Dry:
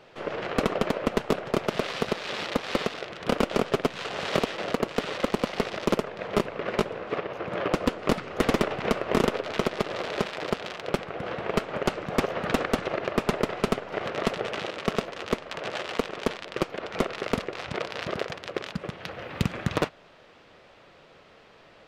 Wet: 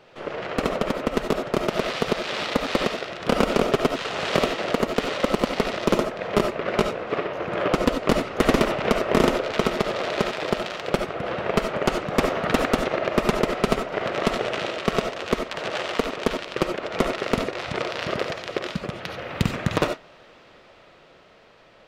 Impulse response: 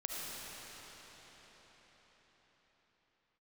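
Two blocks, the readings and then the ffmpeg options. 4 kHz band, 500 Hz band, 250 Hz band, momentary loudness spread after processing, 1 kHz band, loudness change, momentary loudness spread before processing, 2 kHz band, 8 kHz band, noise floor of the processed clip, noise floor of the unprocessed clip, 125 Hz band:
+4.5 dB, +4.5 dB, +4.0 dB, 7 LU, +4.5 dB, +4.5 dB, 6 LU, +4.5 dB, +4.5 dB, −52 dBFS, −54 dBFS, +3.5 dB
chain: -filter_complex "[0:a]dynaudnorm=framelen=250:gausssize=13:maxgain=3.5dB[link_01];[1:a]atrim=start_sample=2205,atrim=end_sample=4410[link_02];[link_01][link_02]afir=irnorm=-1:irlink=0,volume=3.5dB"

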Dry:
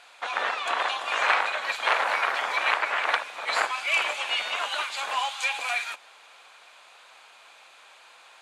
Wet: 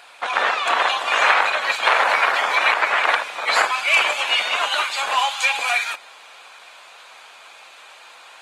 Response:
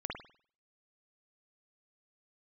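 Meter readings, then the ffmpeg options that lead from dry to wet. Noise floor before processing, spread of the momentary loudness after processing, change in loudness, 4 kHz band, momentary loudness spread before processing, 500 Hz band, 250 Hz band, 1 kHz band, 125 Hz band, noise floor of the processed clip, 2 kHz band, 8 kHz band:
−53 dBFS, 5 LU, +7.5 dB, +8.0 dB, 5 LU, +7.5 dB, +7.5 dB, +7.5 dB, can't be measured, −45 dBFS, +7.5 dB, +8.0 dB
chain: -filter_complex "[0:a]asplit=2[link_01][link_02];[1:a]atrim=start_sample=2205[link_03];[link_02][link_03]afir=irnorm=-1:irlink=0,volume=-22dB[link_04];[link_01][link_04]amix=inputs=2:normalize=0,alimiter=level_in=9.5dB:limit=-1dB:release=50:level=0:latency=1,volume=-2dB" -ar 48000 -c:a libopus -b:a 24k

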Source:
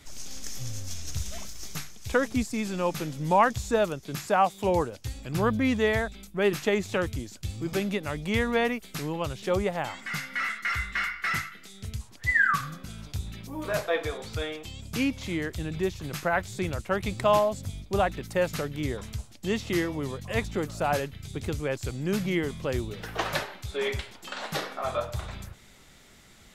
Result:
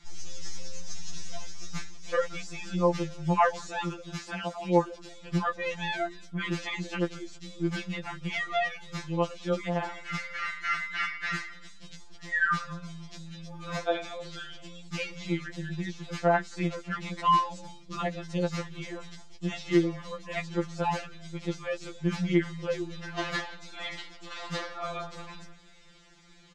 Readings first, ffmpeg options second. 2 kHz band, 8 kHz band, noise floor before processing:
−3.5 dB, −6.0 dB, −52 dBFS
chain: -filter_complex "[0:a]lowpass=frequency=6800:width=0.5412,lowpass=frequency=6800:width=1.3066,asplit=2[link_01][link_02];[link_02]asplit=2[link_03][link_04];[link_03]adelay=170,afreqshift=-89,volume=-21.5dB[link_05];[link_04]adelay=340,afreqshift=-178,volume=-30.9dB[link_06];[link_05][link_06]amix=inputs=2:normalize=0[link_07];[link_01][link_07]amix=inputs=2:normalize=0,afftfilt=real='re*2.83*eq(mod(b,8),0)':imag='im*2.83*eq(mod(b,8),0)':win_size=2048:overlap=0.75"

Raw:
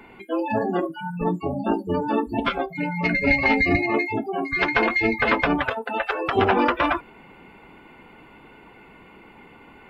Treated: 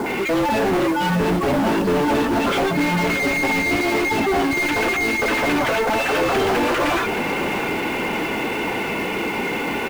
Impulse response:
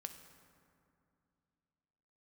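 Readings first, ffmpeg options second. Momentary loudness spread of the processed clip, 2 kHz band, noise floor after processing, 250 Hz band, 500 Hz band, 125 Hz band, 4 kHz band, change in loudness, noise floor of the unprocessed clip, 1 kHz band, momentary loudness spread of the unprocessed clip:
4 LU, +3.0 dB, −24 dBFS, +4.5 dB, +5.0 dB, +4.5 dB, +8.5 dB, +3.0 dB, −49 dBFS, +3.5 dB, 8 LU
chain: -filter_complex "[0:a]equalizer=frequency=1100:width_type=o:width=1.8:gain=-7.5,acompressor=threshold=-27dB:ratio=6,acrossover=split=1300[link_01][link_02];[link_02]adelay=60[link_03];[link_01][link_03]amix=inputs=2:normalize=0,asplit=2[link_04][link_05];[link_05]highpass=frequency=720:poles=1,volume=39dB,asoftclip=type=tanh:threshold=-17dB[link_06];[link_04][link_06]amix=inputs=2:normalize=0,lowpass=frequency=1800:poles=1,volume=-6dB,acrusher=bits=4:mode=log:mix=0:aa=0.000001,asplit=2[link_07][link_08];[link_08]aecho=0:1:620|1240|1860|2480|3100|3720|4340:0.299|0.17|0.097|0.0553|0.0315|0.018|0.0102[link_09];[link_07][link_09]amix=inputs=2:normalize=0,volume=4.5dB"

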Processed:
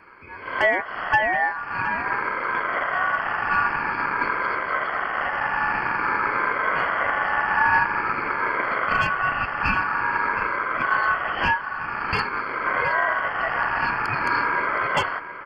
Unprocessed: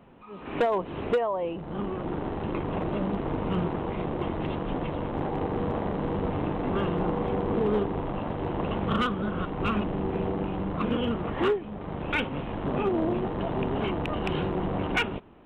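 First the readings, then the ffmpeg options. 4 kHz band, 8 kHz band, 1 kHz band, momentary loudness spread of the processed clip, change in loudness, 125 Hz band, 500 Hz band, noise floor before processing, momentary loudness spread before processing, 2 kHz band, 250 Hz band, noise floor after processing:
+3.0 dB, can't be measured, +11.0 dB, 4 LU, +6.5 dB, −8.0 dB, −3.0 dB, −40 dBFS, 5 LU, +17.0 dB, −9.5 dB, −34 dBFS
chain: -filter_complex "[0:a]afftfilt=real='re*pow(10,11/40*sin(2*PI*(0.66*log(max(b,1)*sr/1024/100)/log(2)-(-0.49)*(pts-256)/sr)))':imag='im*pow(10,11/40*sin(2*PI*(0.66*log(max(b,1)*sr/1024/100)/log(2)-(-0.49)*(pts-256)/sr)))':win_size=1024:overlap=0.75,acontrast=56,asplit=2[link_01][link_02];[link_02]adelay=719,lowpass=frequency=4000:poles=1,volume=-13dB,asplit=2[link_03][link_04];[link_04]adelay=719,lowpass=frequency=4000:poles=1,volume=0.21[link_05];[link_03][link_05]amix=inputs=2:normalize=0[link_06];[link_01][link_06]amix=inputs=2:normalize=0,afreqshift=-34,aeval=exprs='val(0)*sin(2*PI*1300*n/s)':channel_layout=same,asuperstop=centerf=3800:order=12:qfactor=3.8"

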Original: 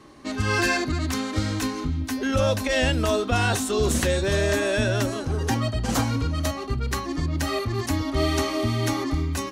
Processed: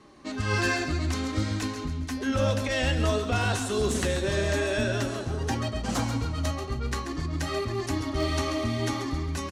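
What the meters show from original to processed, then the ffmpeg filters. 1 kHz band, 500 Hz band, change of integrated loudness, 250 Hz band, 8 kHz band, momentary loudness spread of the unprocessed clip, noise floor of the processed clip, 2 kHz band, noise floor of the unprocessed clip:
−4.0 dB, −4.0 dB, −3.5 dB, −4.0 dB, −5.0 dB, 6 LU, −35 dBFS, −4.0 dB, −33 dBFS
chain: -af "lowpass=9800,aeval=exprs='0.224*(abs(mod(val(0)/0.224+3,4)-2)-1)':channel_layout=same,flanger=delay=4.8:depth=8.4:regen=71:speed=0.52:shape=sinusoidal,aecho=1:1:136|272|408|544|680:0.335|0.144|0.0619|0.0266|0.0115"

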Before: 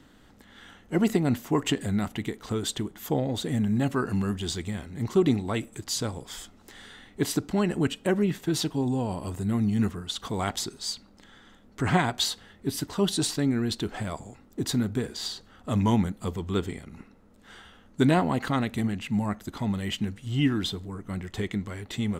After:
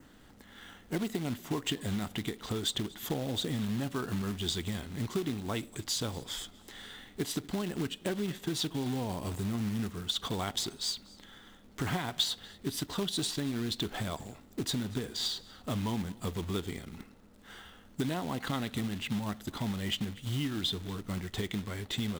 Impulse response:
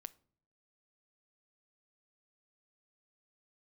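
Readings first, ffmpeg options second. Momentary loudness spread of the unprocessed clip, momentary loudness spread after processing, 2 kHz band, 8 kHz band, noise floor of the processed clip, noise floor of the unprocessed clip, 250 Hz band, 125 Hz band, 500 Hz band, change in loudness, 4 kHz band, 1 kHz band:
11 LU, 12 LU, −6.0 dB, −4.0 dB, −57 dBFS, −56 dBFS, −8.0 dB, −7.0 dB, −8.5 dB, −6.5 dB, −0.5 dB, −8.0 dB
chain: -af "acompressor=threshold=-29dB:ratio=6,acrusher=bits=3:mode=log:mix=0:aa=0.000001,aecho=1:1:239:0.0708,adynamicequalizer=threshold=0.00224:dfrequency=3500:dqfactor=3:tfrequency=3500:tqfactor=3:attack=5:release=100:ratio=0.375:range=3.5:mode=boostabove:tftype=bell,volume=-1.5dB"

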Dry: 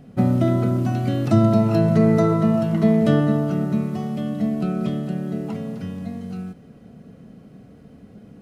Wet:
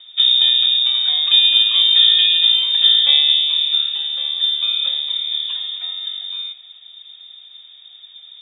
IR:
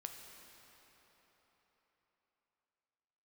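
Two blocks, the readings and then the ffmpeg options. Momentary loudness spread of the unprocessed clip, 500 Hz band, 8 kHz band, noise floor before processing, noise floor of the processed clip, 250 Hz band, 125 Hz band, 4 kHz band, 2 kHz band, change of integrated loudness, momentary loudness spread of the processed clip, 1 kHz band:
14 LU, below −25 dB, can't be measured, −47 dBFS, −44 dBFS, below −40 dB, below −40 dB, +35.0 dB, +9.0 dB, +7.5 dB, 14 LU, below −10 dB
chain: -filter_complex "[0:a]asplit=2[link_01][link_02];[1:a]atrim=start_sample=2205,atrim=end_sample=6615,asetrate=37485,aresample=44100[link_03];[link_02][link_03]afir=irnorm=-1:irlink=0,volume=4.5dB[link_04];[link_01][link_04]amix=inputs=2:normalize=0,lowpass=frequency=3200:width_type=q:width=0.5098,lowpass=frequency=3200:width_type=q:width=0.6013,lowpass=frequency=3200:width_type=q:width=0.9,lowpass=frequency=3200:width_type=q:width=2.563,afreqshift=-3800,volume=-3dB"

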